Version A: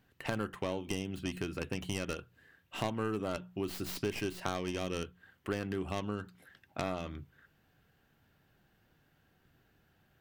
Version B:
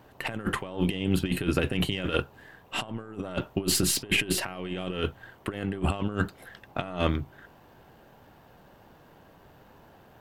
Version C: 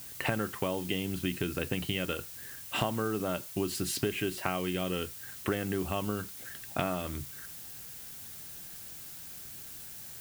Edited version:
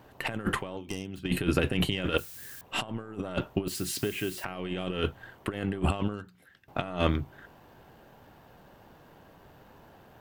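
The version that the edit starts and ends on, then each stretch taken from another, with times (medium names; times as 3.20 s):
B
0.77–1.25 s: from A
2.18–2.61 s: from C
3.68–4.44 s: from C
6.14–6.68 s: from A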